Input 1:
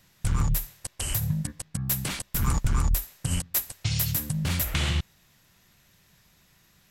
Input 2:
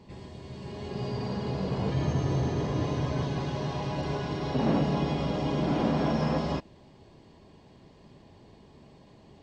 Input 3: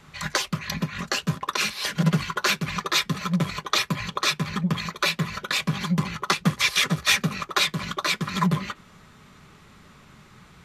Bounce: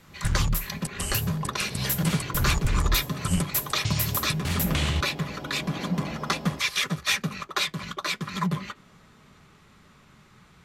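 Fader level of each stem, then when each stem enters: −0.5, −9.0, −4.5 decibels; 0.00, 0.00, 0.00 seconds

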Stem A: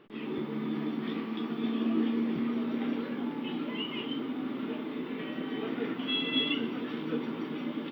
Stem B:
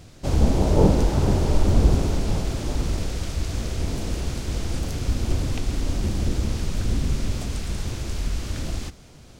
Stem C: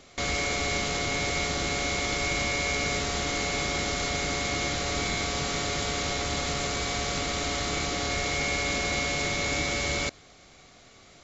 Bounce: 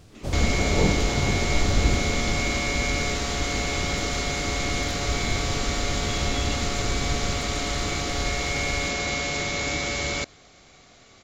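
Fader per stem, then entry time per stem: −8.0, −5.0, +1.0 decibels; 0.00, 0.00, 0.15 seconds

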